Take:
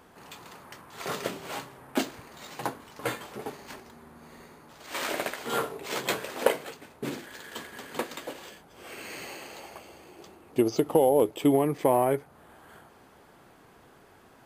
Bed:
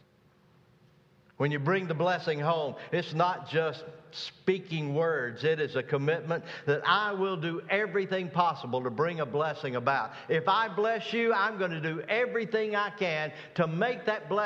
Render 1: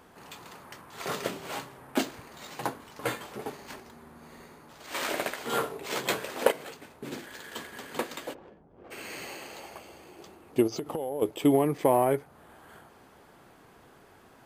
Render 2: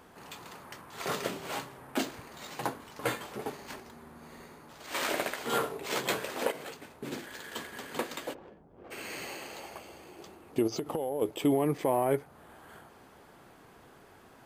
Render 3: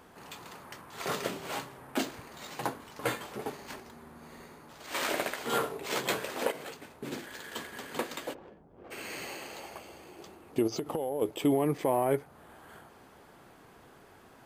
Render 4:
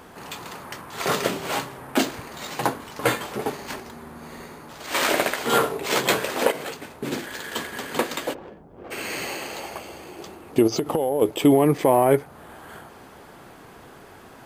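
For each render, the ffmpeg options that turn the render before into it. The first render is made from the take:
-filter_complex "[0:a]asettb=1/sr,asplit=3[a][b][c];[a]atrim=end=6.514[d];[b]atrim=start=6.51:end=7.12,asetpts=PTS-STARTPTS,afade=t=in:d=0.004:c=qsin,afade=t=out:st=0.606:d=0.004:c=qsin,acompressor=threshold=-37dB:ratio=3:attack=3.2:release=140:knee=1:detection=peak[e];[c]atrim=start=7.116[f];[d][e]acrossfade=d=0.004:c1=hsin:c2=qsin[g];[g][f]acrossfade=d=0.004:c1=qsin:c2=hsin,asplit=3[h][i][j];[h]afade=t=out:st=8.33:d=0.02[k];[i]adynamicsmooth=sensitivity=3.5:basefreq=540,afade=t=in:st=8.33:d=0.02,afade=t=out:st=8.9:d=0.02[l];[j]afade=t=in:st=8.9:d=0.02[m];[k][l][m]amix=inputs=3:normalize=0,asplit=3[n][o][p];[n]afade=t=out:st=10.66:d=0.02[q];[o]acompressor=threshold=-29dB:ratio=8:attack=3.2:release=140:knee=1:detection=peak,afade=t=in:st=10.66:d=0.02,afade=t=out:st=11.21:d=0.02[r];[p]afade=t=in:st=11.21:d=0.02[s];[q][r][s]amix=inputs=3:normalize=0"
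-af "alimiter=limit=-17.5dB:level=0:latency=1:release=62"
-af anull
-af "volume=10dB"

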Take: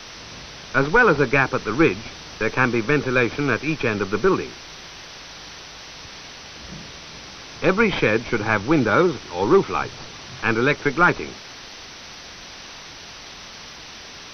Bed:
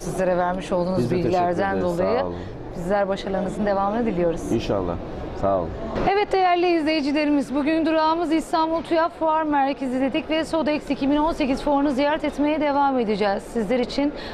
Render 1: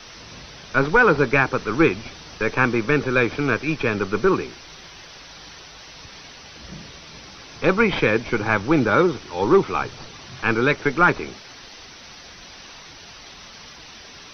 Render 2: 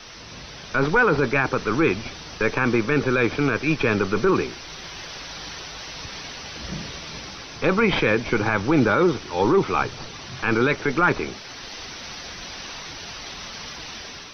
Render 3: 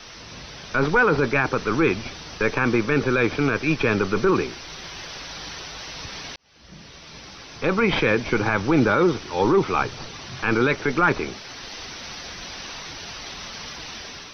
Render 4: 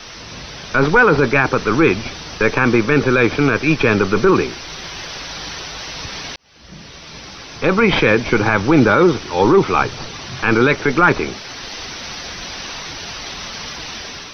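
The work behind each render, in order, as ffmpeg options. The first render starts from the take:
-af "afftdn=nr=6:nf=-40"
-af "dynaudnorm=f=170:g=5:m=6dB,alimiter=limit=-9.5dB:level=0:latency=1:release=21"
-filter_complex "[0:a]asplit=2[a][b];[a]atrim=end=6.36,asetpts=PTS-STARTPTS,afade=t=out:st=6.356:d=0.004:c=hsin[c];[b]atrim=start=6.36,asetpts=PTS-STARTPTS,afade=t=in:d=1.63[d];[c][d]concat=n=2:v=0:a=1"
-af "volume=6.5dB"

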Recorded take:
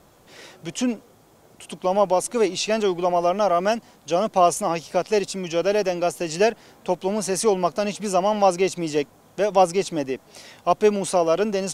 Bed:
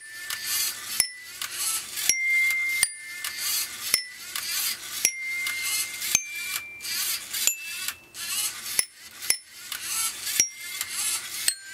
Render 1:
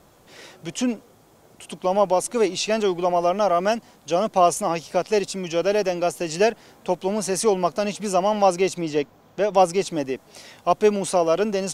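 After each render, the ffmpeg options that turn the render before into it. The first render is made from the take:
-filter_complex "[0:a]asettb=1/sr,asplit=3[a][b][c];[a]atrim=end=8.814[d];[b]atrim=start=8.81:end=9.54,asetpts=PTS-STARTPTS,afade=t=in:d=0.004:c=qsin,afade=t=out:st=0.726:d=0.004:c=qsin,equalizer=f=9.7k:w=1:g=-12[e];[c]atrim=start=9.536[f];[d][e]acrossfade=d=0.004:c1=hsin:c2=qsin[g];[g][f]acrossfade=d=0.004:c1=qsin:c2=hsin"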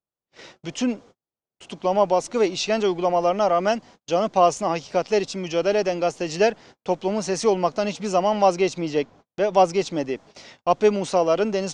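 -af "agate=range=-42dB:threshold=-44dB:ratio=16:detection=peak,lowpass=f=6.5k:w=0.5412,lowpass=f=6.5k:w=1.3066"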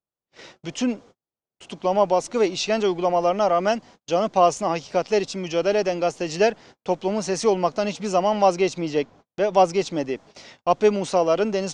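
-af anull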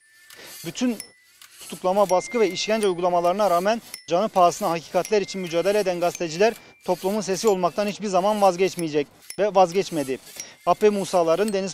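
-filter_complex "[1:a]volume=-14.5dB[a];[0:a][a]amix=inputs=2:normalize=0"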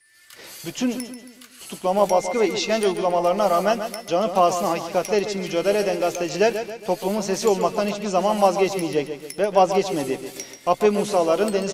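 -filter_complex "[0:a]asplit=2[a][b];[b]adelay=15,volume=-12.5dB[c];[a][c]amix=inputs=2:normalize=0,aecho=1:1:137|274|411|548|685:0.335|0.157|0.074|0.0348|0.0163"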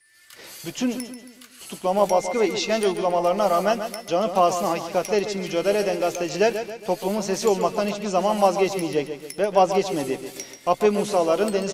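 -af "volume=-1dB"

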